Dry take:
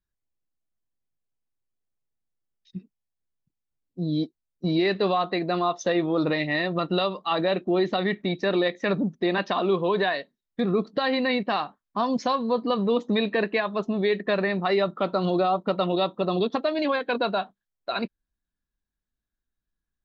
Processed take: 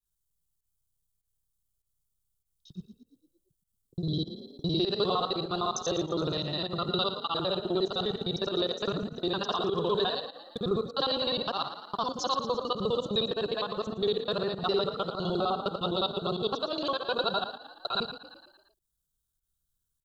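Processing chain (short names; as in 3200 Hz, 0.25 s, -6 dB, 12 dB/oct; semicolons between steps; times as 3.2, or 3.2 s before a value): local time reversal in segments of 51 ms; EQ curve 150 Hz 0 dB, 250 Hz -14 dB, 400 Hz -2 dB, 630 Hz -8 dB, 960 Hz -4 dB, 1400 Hz -1 dB, 2100 Hz -28 dB, 3100 Hz +3 dB, 5300 Hz +4 dB, 8500 Hz +12 dB; in parallel at +2 dB: vocal rider 2 s; on the sum: frequency-shifting echo 0.114 s, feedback 54%, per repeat +32 Hz, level -11 dB; pump 99 bpm, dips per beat 1, -14 dB, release 92 ms; gain -8 dB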